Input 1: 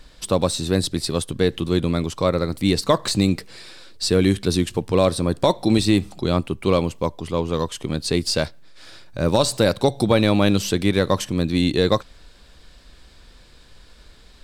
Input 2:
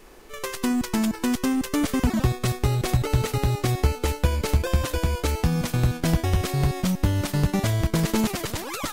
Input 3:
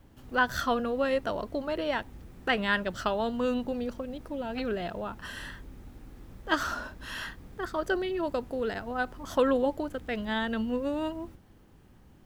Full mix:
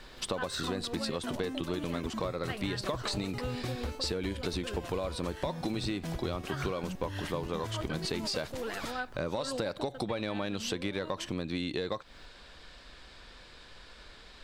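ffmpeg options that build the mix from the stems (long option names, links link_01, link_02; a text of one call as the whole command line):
ffmpeg -i stem1.wav -i stem2.wav -i stem3.wav -filter_complex "[0:a]asplit=2[link_01][link_02];[link_02]highpass=frequency=720:poles=1,volume=9dB,asoftclip=type=tanh:threshold=-3.5dB[link_03];[link_01][link_03]amix=inputs=2:normalize=0,lowpass=frequency=3500:poles=1,volume=-6dB,acompressor=threshold=-19dB:ratio=6,volume=-1.5dB,asplit=2[link_04][link_05];[1:a]aeval=exprs='0.178*(abs(mod(val(0)/0.178+3,4)-2)-1)':channel_layout=same,volume=-9dB[link_06];[2:a]tiltshelf=frequency=970:gain=-3.5,volume=-2dB[link_07];[link_05]apad=whole_len=540607[link_08];[link_07][link_08]sidechaincompress=threshold=-27dB:ratio=8:attack=5.6:release=130[link_09];[link_04][link_06][link_09]amix=inputs=3:normalize=0,highshelf=frequency=8800:gain=-6.5,acompressor=threshold=-33dB:ratio=3" out.wav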